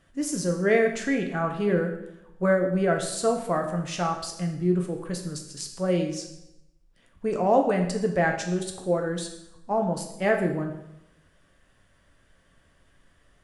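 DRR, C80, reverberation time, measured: 2.5 dB, 9.5 dB, 0.90 s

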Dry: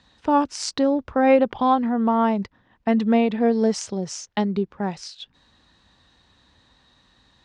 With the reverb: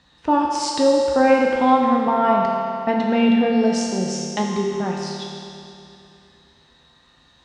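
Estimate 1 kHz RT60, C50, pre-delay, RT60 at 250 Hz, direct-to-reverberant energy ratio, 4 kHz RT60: 2.7 s, 0.0 dB, 6 ms, 2.7 s, -2.5 dB, 2.6 s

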